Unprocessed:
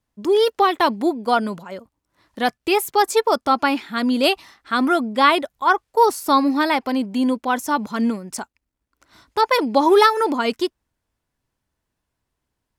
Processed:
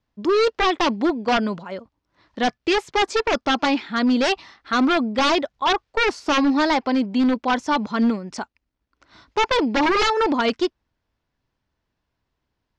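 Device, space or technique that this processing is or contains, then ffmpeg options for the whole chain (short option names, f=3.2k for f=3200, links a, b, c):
synthesiser wavefolder: -af "aeval=exprs='0.188*(abs(mod(val(0)/0.188+3,4)-2)-1)':c=same,lowpass=f=5.5k:w=0.5412,lowpass=f=5.5k:w=1.3066,volume=1.5dB"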